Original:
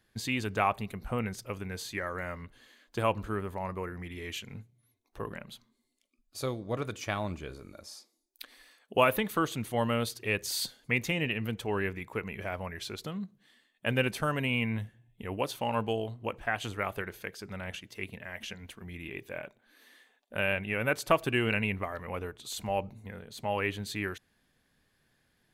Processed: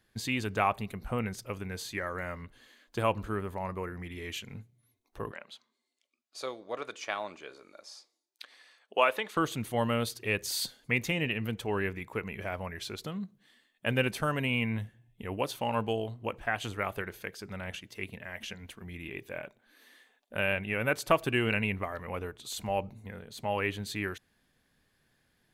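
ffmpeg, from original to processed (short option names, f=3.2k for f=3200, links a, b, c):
-filter_complex "[0:a]asettb=1/sr,asplit=3[a][b][c];[a]atrim=end=5.314[d];[b]atrim=start=5.31:end=9.37,asetpts=PTS-STARTPTS,afade=t=in:d=0.004:c=qsin,afade=t=out:st=4.056:d=0.004:c=qsin,highpass=480,lowpass=6.9k[e];[c]atrim=start=9.366[f];[d][e]acrossfade=d=0.004:c1=hsin:c2=qsin[g];[g][f]acrossfade=d=0.004:c1=qsin:c2=hsin"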